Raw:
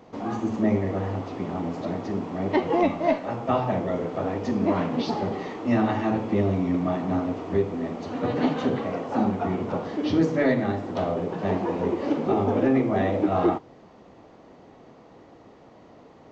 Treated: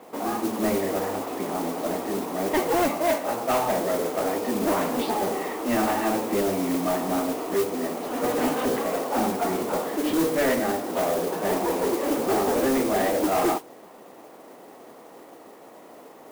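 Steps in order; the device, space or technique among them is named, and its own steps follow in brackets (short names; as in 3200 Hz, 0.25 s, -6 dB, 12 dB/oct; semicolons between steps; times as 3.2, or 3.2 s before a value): carbon microphone (BPF 320–3000 Hz; soft clip -23.5 dBFS, distortion -11 dB; modulation noise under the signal 13 dB); gain +5.5 dB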